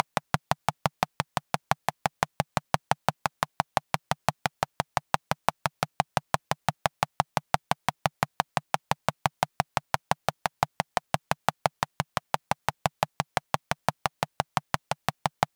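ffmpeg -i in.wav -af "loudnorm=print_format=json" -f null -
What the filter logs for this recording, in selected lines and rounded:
"input_i" : "-30.6",
"input_tp" : "-2.0",
"input_lra" : "0.9",
"input_thresh" : "-40.6",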